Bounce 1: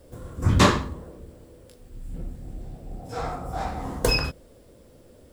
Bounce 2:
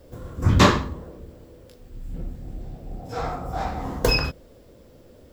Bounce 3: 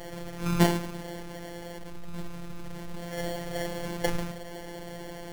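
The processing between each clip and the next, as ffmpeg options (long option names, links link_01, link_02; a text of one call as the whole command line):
ffmpeg -i in.wav -af "equalizer=frequency=9200:width_type=o:width=0.39:gain=-11,volume=2dB" out.wav
ffmpeg -i in.wav -af "aeval=exprs='val(0)+0.5*0.0422*sgn(val(0))':channel_layout=same,acrusher=samples=35:mix=1:aa=0.000001,afftfilt=real='hypot(re,im)*cos(PI*b)':imag='0':win_size=1024:overlap=0.75,volume=-4dB" out.wav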